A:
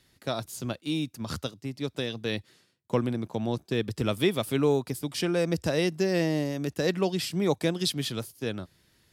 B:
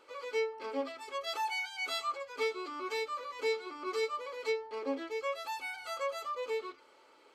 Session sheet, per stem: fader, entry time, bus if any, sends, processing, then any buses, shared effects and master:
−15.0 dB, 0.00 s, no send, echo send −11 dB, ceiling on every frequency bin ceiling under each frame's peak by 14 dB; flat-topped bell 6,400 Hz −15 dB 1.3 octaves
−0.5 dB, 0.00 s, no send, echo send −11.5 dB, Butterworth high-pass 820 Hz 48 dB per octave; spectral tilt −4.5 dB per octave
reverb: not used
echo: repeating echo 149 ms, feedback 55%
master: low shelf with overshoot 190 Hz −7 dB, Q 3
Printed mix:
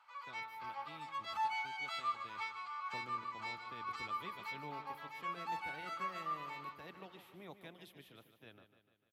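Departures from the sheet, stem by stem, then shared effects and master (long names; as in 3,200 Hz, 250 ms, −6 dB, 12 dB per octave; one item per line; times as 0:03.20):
stem A −15.0 dB → −26.5 dB
master: missing low shelf with overshoot 190 Hz −7 dB, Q 3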